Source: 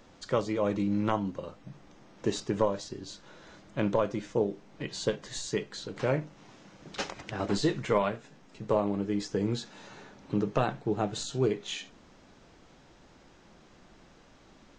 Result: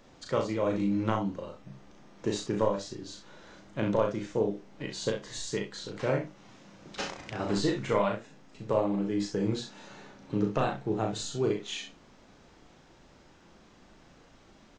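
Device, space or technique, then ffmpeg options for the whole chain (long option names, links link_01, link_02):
slapback doubling: -filter_complex "[0:a]asplit=3[link_01][link_02][link_03];[link_02]adelay=36,volume=-4dB[link_04];[link_03]adelay=65,volume=-8.5dB[link_05];[link_01][link_04][link_05]amix=inputs=3:normalize=0,volume=-2dB"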